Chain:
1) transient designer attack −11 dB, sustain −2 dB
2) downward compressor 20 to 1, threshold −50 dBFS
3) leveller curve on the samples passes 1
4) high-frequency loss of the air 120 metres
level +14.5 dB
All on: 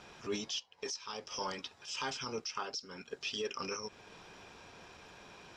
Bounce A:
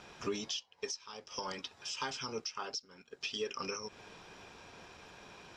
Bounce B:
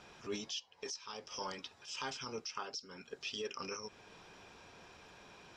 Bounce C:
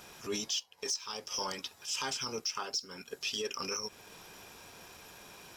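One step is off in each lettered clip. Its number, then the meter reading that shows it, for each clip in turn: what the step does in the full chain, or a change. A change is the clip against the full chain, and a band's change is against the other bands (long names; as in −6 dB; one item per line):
1, change in momentary loudness spread −1 LU
3, change in crest factor +2.0 dB
4, 8 kHz band +7.5 dB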